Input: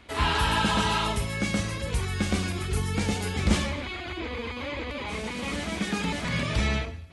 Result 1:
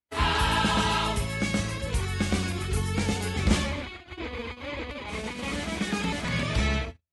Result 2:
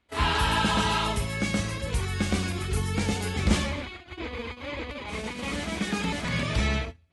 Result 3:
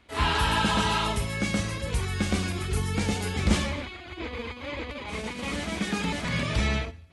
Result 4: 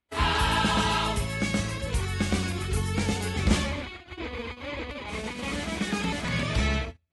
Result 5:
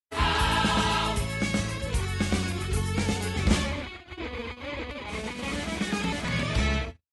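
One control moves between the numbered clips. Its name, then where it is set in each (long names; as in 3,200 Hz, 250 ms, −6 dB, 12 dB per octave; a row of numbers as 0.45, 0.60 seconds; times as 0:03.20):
noise gate, range: −45, −20, −7, −33, −59 decibels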